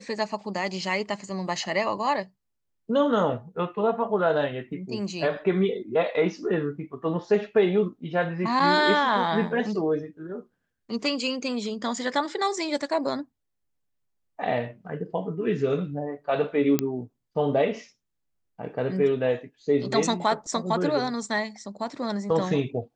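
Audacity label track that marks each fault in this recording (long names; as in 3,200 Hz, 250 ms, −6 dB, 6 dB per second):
16.790000	16.790000	click −8 dBFS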